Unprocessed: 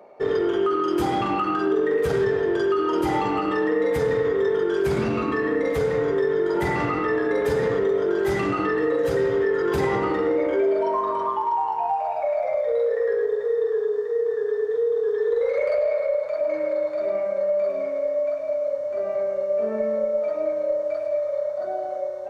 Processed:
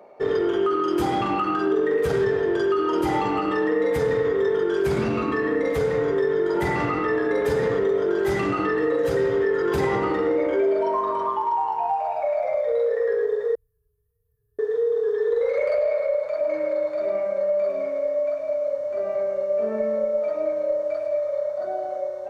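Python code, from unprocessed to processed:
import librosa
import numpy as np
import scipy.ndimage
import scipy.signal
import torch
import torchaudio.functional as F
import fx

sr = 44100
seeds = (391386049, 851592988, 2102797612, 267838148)

y = fx.cheby2_bandstop(x, sr, low_hz=240.0, high_hz=6100.0, order=4, stop_db=50, at=(13.55, 14.59))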